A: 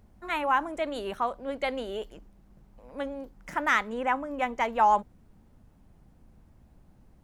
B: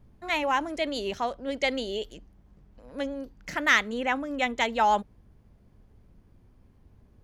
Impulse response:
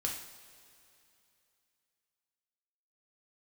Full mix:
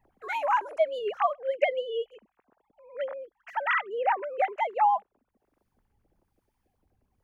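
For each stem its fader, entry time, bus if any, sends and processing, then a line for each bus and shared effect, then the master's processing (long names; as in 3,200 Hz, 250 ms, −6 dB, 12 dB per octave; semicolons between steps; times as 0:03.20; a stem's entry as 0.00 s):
+1.0 dB, 0.00 s, no send, three sine waves on the formant tracks; speech leveller within 4 dB 0.5 s
−2.0 dB, 0.00 s, no send, first-order pre-emphasis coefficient 0.8; brickwall limiter −27.5 dBFS, peak gain reduction 11.5 dB; two-band tremolo in antiphase 1 Hz, depth 50%, crossover 1,400 Hz; automatic ducking −18 dB, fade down 1.70 s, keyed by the first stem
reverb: not used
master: no processing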